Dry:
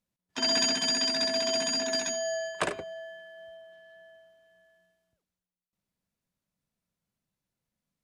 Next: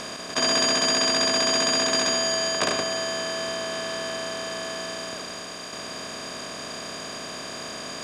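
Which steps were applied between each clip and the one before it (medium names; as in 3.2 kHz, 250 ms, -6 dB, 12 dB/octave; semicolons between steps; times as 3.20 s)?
spectral levelling over time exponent 0.2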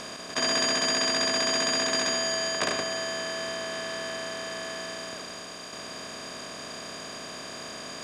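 dynamic bell 1.9 kHz, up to +4 dB, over -43 dBFS, Q 3.3; trim -4 dB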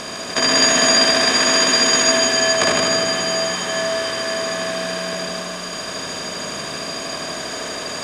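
multi-head delay 78 ms, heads first and second, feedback 65%, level -6.5 dB; trim +8.5 dB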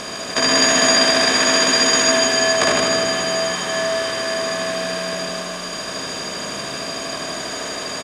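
doubling 15 ms -12 dB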